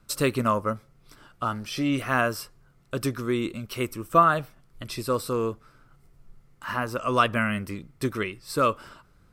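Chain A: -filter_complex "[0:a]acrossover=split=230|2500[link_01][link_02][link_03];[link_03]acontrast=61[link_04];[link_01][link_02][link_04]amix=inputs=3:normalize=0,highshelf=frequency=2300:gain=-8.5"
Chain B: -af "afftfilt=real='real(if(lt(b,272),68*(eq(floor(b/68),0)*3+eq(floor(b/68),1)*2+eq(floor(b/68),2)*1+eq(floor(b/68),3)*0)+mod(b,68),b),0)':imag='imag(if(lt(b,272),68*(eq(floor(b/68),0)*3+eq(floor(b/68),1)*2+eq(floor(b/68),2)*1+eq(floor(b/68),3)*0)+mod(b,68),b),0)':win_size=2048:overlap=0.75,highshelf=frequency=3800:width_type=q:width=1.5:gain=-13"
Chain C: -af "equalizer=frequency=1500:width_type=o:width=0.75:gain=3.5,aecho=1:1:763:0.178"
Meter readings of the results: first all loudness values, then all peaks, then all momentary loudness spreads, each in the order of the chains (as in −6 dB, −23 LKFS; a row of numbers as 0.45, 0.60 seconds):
−27.5, −34.0, −25.5 LKFS; −6.5, −14.5, −5.0 dBFS; 14, 15, 20 LU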